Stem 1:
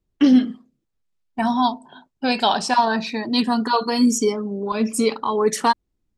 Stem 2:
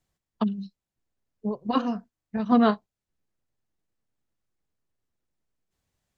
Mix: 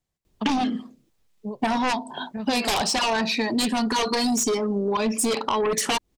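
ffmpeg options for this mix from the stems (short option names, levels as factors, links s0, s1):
-filter_complex "[0:a]lowshelf=f=320:g=-6.5,aeval=exprs='0.501*sin(PI/2*3.98*val(0)/0.501)':c=same,adelay=250,volume=0.794[s0];[1:a]volume=0.668[s1];[s0][s1]amix=inputs=2:normalize=0,equalizer=f=1400:t=o:w=0.63:g=-3.5,acompressor=threshold=0.0891:ratio=12"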